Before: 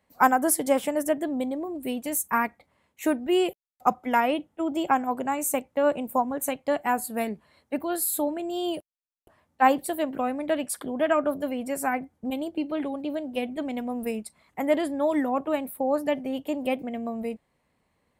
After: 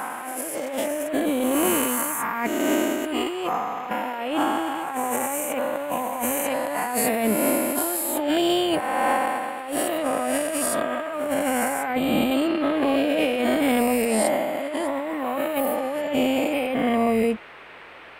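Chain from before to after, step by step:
peak hold with a rise ahead of every peak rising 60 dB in 2.23 s
compressor whose output falls as the input rises −29 dBFS, ratio −1
noise in a band 310–2,600 Hz −48 dBFS
level +4 dB

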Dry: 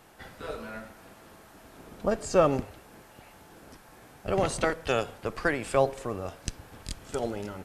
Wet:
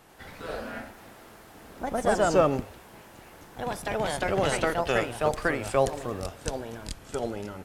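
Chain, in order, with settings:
delay with pitch and tempo change per echo 96 ms, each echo +2 semitones, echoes 2

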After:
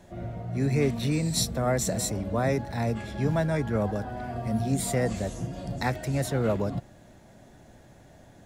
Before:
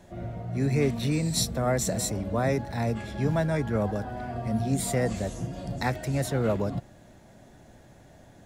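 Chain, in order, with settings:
0:04.24–0:04.72: high-shelf EQ 9,700 Hz +6 dB

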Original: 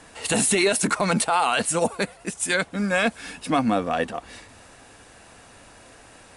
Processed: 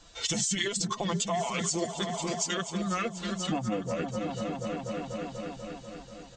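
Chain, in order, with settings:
spectral dynamics exaggerated over time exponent 1.5
flat-topped bell 5,900 Hz +12 dB
formants moved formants −4 semitones
high-shelf EQ 3,100 Hz −9 dB
comb filter 5.8 ms, depth 51%
echo whose low-pass opens from repeat to repeat 244 ms, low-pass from 200 Hz, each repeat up 2 octaves, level −6 dB
downward compressor 4 to 1, threshold −39 dBFS, peak gain reduction 19.5 dB
level +8 dB

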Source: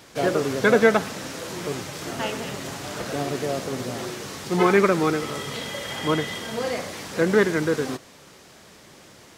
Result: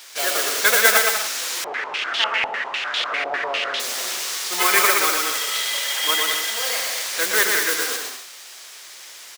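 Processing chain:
high-pass filter 490 Hz 12 dB per octave
noise that follows the level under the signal 12 dB
tilt shelving filter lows −10 dB, about 1,100 Hz
bouncing-ball delay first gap 120 ms, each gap 0.65×, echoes 5
0:01.64–0:03.80: low-pass on a step sequencer 10 Hz 790–3,400 Hz
level +1 dB

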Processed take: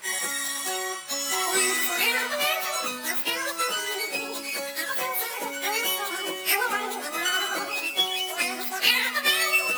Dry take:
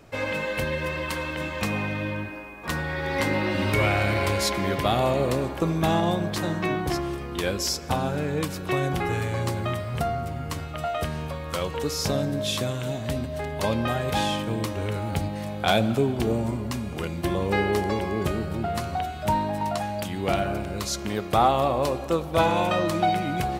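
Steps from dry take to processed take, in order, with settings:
in parallel at −11 dB: sample-and-hold swept by an LFO 24×, swing 60% 2 Hz
on the sum: high-shelf EQ 7,700 Hz −5.5 dB
echo ahead of the sound 57 ms −13 dB
change of speed 3.62×
spectral tilt +2.5 dB per octave
mains-hum notches 60/120/180/240/300/360/420 Hz
time stretch by phase vocoder 1.5×
reversed playback
upward compression, threshold −24 dBFS
reversed playback
level −2.5 dB

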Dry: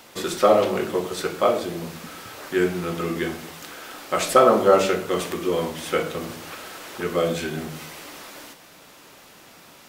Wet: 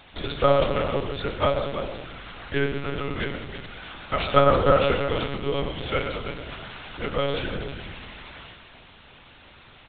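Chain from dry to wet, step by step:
high-shelf EQ 2,400 Hz +8.5 dB
notch filter 760 Hz, Q 21
single-tap delay 323 ms −10 dB
on a send at −9 dB: convolution reverb RT60 0.35 s, pre-delay 113 ms
on the sum: one-pitch LPC vocoder at 8 kHz 140 Hz
level −3.5 dB

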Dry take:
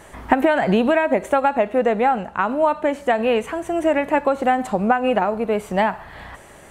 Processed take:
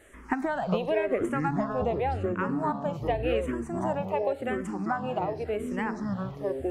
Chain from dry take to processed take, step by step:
delay with pitch and tempo change per echo 248 ms, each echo −7 semitones, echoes 3
0:04.01–0:05.39: low-shelf EQ 190 Hz −7.5 dB
frequency shifter mixed with the dry sound −0.9 Hz
level −9 dB

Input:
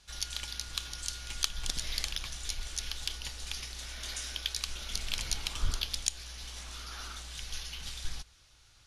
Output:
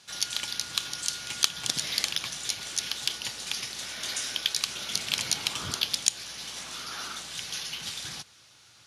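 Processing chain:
high-pass filter 120 Hz 24 dB per octave
level +7 dB

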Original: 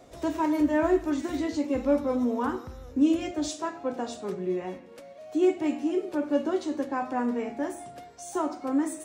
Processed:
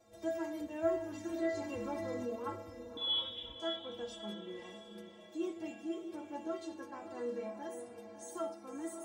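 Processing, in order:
stiff-string resonator 99 Hz, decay 0.61 s, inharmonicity 0.03
0:02.97–0:03.60: voice inversion scrambler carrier 3,700 Hz
feedback delay with all-pass diffusion 597 ms, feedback 41%, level −9 dB
0:01.57–0:02.36: envelope flattener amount 50%
level +2.5 dB

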